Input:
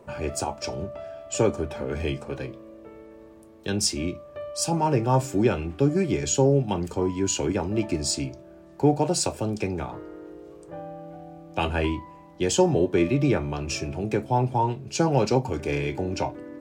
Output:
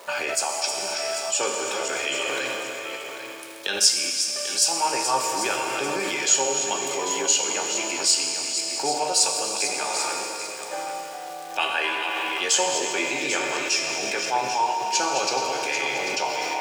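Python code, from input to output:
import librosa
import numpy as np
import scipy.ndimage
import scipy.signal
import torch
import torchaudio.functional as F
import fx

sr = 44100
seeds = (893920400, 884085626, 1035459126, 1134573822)

p1 = fx.reverse_delay(x, sr, ms=269, wet_db=-8.5)
p2 = fx.dmg_crackle(p1, sr, seeds[0], per_s=540.0, level_db=-50.0)
p3 = scipy.signal.sosfilt(scipy.signal.butter(2, 780.0, 'highpass', fs=sr, output='sos'), p2)
p4 = fx.high_shelf(p3, sr, hz=2000.0, db=9.5)
p5 = fx.doubler(p4, sr, ms=15.0, db=-10.5)
p6 = fx.rev_schroeder(p5, sr, rt60_s=2.4, comb_ms=27, drr_db=4.5)
p7 = fx.over_compress(p6, sr, threshold_db=-37.0, ratio=-1.0)
p8 = p6 + (p7 * 10.0 ** (-1.0 / 20.0))
p9 = fx.high_shelf(p8, sr, hz=6700.0, db=-5.0)
y = p9 + 10.0 ** (-10.0 / 20.0) * np.pad(p9, (int(792 * sr / 1000.0), 0))[:len(p9)]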